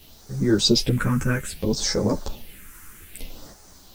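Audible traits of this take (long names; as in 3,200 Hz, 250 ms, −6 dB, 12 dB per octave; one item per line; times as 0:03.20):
phaser sweep stages 4, 0.62 Hz, lowest notch 640–2,800 Hz
a quantiser's noise floor 10 bits, dither none
a shimmering, thickened sound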